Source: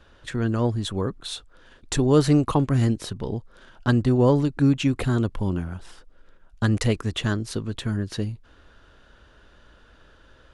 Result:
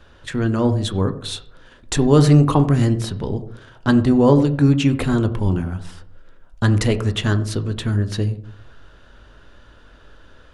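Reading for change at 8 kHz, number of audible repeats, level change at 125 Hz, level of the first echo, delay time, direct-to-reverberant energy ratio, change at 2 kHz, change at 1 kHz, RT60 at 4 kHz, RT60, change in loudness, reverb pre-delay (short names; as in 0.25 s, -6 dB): +4.0 dB, none, +6.0 dB, none, none, 8.5 dB, +4.5 dB, +5.0 dB, 0.35 s, 0.60 s, +5.5 dB, 12 ms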